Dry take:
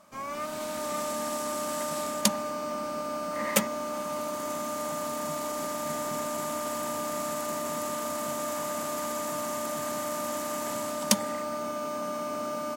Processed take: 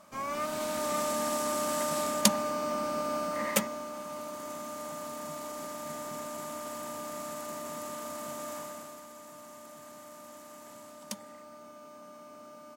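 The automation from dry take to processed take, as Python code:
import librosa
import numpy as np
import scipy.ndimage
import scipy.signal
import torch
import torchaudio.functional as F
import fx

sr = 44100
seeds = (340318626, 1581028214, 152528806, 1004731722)

y = fx.gain(x, sr, db=fx.line((3.19, 1.0), (3.93, -7.0), (8.56, -7.0), (9.06, -16.5)))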